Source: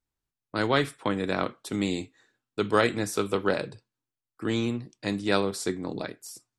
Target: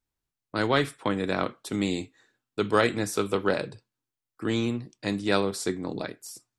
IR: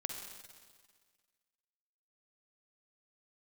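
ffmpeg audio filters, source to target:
-af "aeval=exprs='0.447*(cos(1*acos(clip(val(0)/0.447,-1,1)))-cos(1*PI/2))+0.00708*(cos(5*acos(clip(val(0)/0.447,-1,1)))-cos(5*PI/2))':c=same"

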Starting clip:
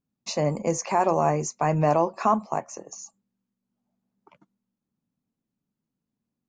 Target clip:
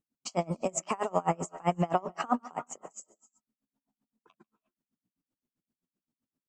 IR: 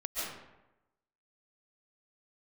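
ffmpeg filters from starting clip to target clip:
-filter_complex "[0:a]asetrate=49501,aresample=44100,atempo=0.890899,asplit=2[s0][s1];[1:a]atrim=start_sample=2205,afade=t=out:st=0.25:d=0.01,atrim=end_sample=11466,adelay=145[s2];[s1][s2]afir=irnorm=-1:irlink=0,volume=0.119[s3];[s0][s3]amix=inputs=2:normalize=0,aeval=exprs='val(0)*pow(10,-30*(0.5-0.5*cos(2*PI*7.7*n/s))/20)':c=same"

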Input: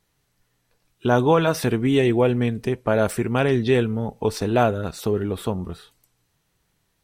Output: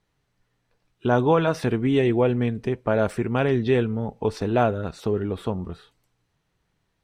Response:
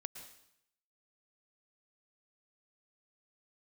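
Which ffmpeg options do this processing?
-af "aemphasis=mode=reproduction:type=50fm,volume=0.794"

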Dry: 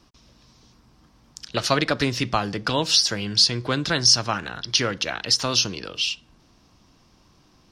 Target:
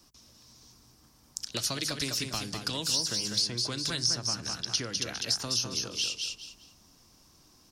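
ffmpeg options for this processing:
-filter_complex "[0:a]bandreject=f=50:t=h:w=6,bandreject=f=100:t=h:w=6,bandreject=f=150:t=h:w=6,bandreject=f=200:t=h:w=6,aecho=1:1:200|400|600:0.422|0.105|0.0264,acrossover=split=4200[s0][s1];[s1]crystalizer=i=4:c=0[s2];[s0][s2]amix=inputs=2:normalize=0,acrossover=split=350|2200[s3][s4][s5];[s3]acompressor=threshold=0.0282:ratio=4[s6];[s4]acompressor=threshold=0.0158:ratio=4[s7];[s5]acompressor=threshold=0.0708:ratio=4[s8];[s6][s7][s8]amix=inputs=3:normalize=0,volume=0.501"

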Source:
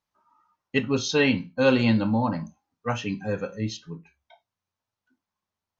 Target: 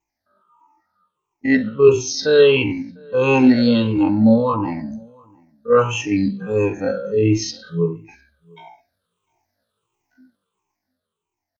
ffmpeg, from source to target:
-filter_complex "[0:a]afftfilt=real='re*pow(10,20/40*sin(2*PI*(0.7*log(max(b,1)*sr/1024/100)/log(2)-(-3)*(pts-256)/sr)))':imag='im*pow(10,20/40*sin(2*PI*(0.7*log(max(b,1)*sr/1024/100)/log(2)-(-3)*(pts-256)/sr)))':win_size=1024:overlap=0.75,equalizer=f=400:w=1.5:g=8,dynaudnorm=f=120:g=11:m=2.82,atempo=0.5,asplit=2[s0][s1];[s1]adelay=699.7,volume=0.0398,highshelf=f=4000:g=-15.7[s2];[s0][s2]amix=inputs=2:normalize=0,volume=0.891"

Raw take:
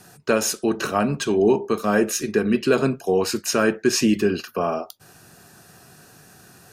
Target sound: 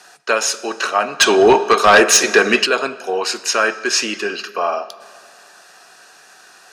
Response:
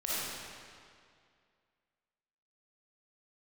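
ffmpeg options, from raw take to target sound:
-filter_complex "[0:a]highpass=740,lowpass=6600,asplit=2[s0][s1];[1:a]atrim=start_sample=2205[s2];[s1][s2]afir=irnorm=-1:irlink=0,volume=0.0794[s3];[s0][s3]amix=inputs=2:normalize=0,asplit=3[s4][s5][s6];[s4]afade=t=out:st=1.19:d=0.02[s7];[s5]aeval=exprs='0.282*sin(PI/2*2.24*val(0)/0.282)':c=same,afade=t=in:st=1.19:d=0.02,afade=t=out:st=2.65:d=0.02[s8];[s6]afade=t=in:st=2.65:d=0.02[s9];[s7][s8][s9]amix=inputs=3:normalize=0,volume=2.37"

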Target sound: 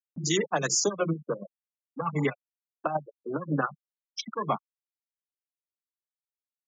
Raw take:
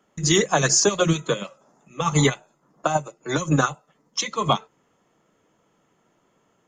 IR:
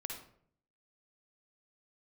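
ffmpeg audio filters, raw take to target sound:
-filter_complex "[0:a]afwtdn=0.0398,afftfilt=real='re*gte(hypot(re,im),0.0501)':imag='im*gte(hypot(re,im),0.0501)':win_size=1024:overlap=0.75,highpass=f=150:w=0.5412,highpass=f=150:w=1.3066,acrossover=split=1400[s0][s1];[s0]acompressor=mode=upward:threshold=0.0708:ratio=2.5[s2];[s2][s1]amix=inputs=2:normalize=0,volume=0.447"

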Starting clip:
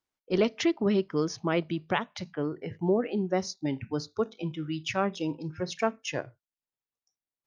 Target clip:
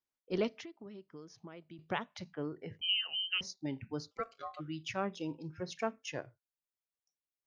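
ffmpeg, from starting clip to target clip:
-filter_complex "[0:a]asettb=1/sr,asplit=3[s0][s1][s2];[s0]atrim=end=0.534[s3];[s1]atrim=start=0.53:end=1.79,asetpts=PTS-STARTPTS,afade=t=in:d=0.004:c=qsin,afade=t=out:st=1.256:d=0.004:c=qsin,acompressor=threshold=0.01:ratio=6[s4];[s2]atrim=start=1.786[s5];[s3][s4]acrossfade=d=0.004:c1=hsin:c2=qsin[s6];[s6][s5]acrossfade=d=0.004:c1=qsin:c2=hsin,asettb=1/sr,asplit=3[s7][s8][s9];[s7]atrim=end=2.814[s10];[s8]atrim=start=2.81:end=3.41,asetpts=PTS-STARTPTS,afade=t=in:d=0.004:c=qsin,afade=t=out:st=0.596:d=0.004:c=qsin,lowpass=f=2800:t=q:w=0.5098,lowpass=f=2800:t=q:w=0.6013,lowpass=f=2800:t=q:w=0.9,lowpass=f=2800:t=q:w=2.563,afreqshift=-3300[s11];[s9]atrim=start=3.406[s12];[s10][s11]acrossfade=d=0.004:c1=hsin:c2=qsin[s13];[s13][s12]acrossfade=d=0.004:c1=qsin:c2=hsin,asplit=3[s14][s15][s16];[s14]afade=t=out:st=4.1:d=0.02[s17];[s15]aeval=exprs='val(0)*sin(2*PI*910*n/s)':c=same,afade=t=in:st=4.1:d=0.02,afade=t=out:st=4.59:d=0.02[s18];[s16]afade=t=in:st=4.59:d=0.02[s19];[s17][s18][s19]amix=inputs=3:normalize=0,volume=0.398"

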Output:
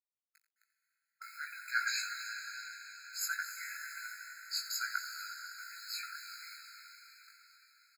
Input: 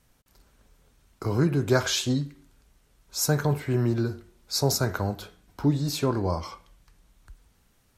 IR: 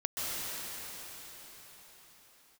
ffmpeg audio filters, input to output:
-filter_complex "[0:a]highpass=100,highshelf=f=2300:g=-10.5,acrusher=bits=8:mix=0:aa=0.000001,asplit=2[s0][s1];[s1]adelay=19,volume=0.708[s2];[s0][s2]amix=inputs=2:normalize=0,asplit=2[s3][s4];[1:a]atrim=start_sample=2205,adelay=87[s5];[s4][s5]afir=irnorm=-1:irlink=0,volume=0.237[s6];[s3][s6]amix=inputs=2:normalize=0,afftfilt=real='re*eq(mod(floor(b*sr/1024/1300),2),1)':imag='im*eq(mod(floor(b*sr/1024/1300),2),1)':win_size=1024:overlap=0.75,volume=1.12"

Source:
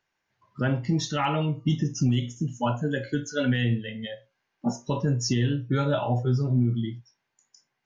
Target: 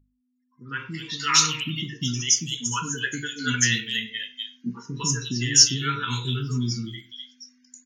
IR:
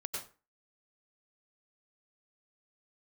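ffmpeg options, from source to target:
-filter_complex "[0:a]highpass=98,asubboost=boost=5:cutoff=220,asuperstop=centerf=670:order=8:qfactor=1.3,aderivative,acrossover=split=380|3000[s0][s1][s2];[s1]adelay=100[s3];[s2]adelay=350[s4];[s0][s3][s4]amix=inputs=3:normalize=0,aeval=exprs='val(0)+0.000501*(sin(2*PI*50*n/s)+sin(2*PI*2*50*n/s)/2+sin(2*PI*3*50*n/s)/3+sin(2*PI*4*50*n/s)/4+sin(2*PI*5*50*n/s)/5)':c=same,bandreject=f=50:t=h:w=6,bandreject=f=100:t=h:w=6,bandreject=f=150:t=h:w=6,bandreject=f=200:t=h:w=6,dynaudnorm=f=520:g=3:m=5.62,asplit=2[s5][s6];[1:a]atrim=start_sample=2205,afade=t=out:st=0.16:d=0.01,atrim=end_sample=7497,lowpass=3300[s7];[s6][s7]afir=irnorm=-1:irlink=0,volume=0.2[s8];[s5][s8]amix=inputs=2:normalize=0,acontrast=39,aresample=32000,aresample=44100,afftfilt=real='re*gte(hypot(re,im),0.000398)':imag='im*gte(hypot(re,im),0.000398)':win_size=1024:overlap=0.75"

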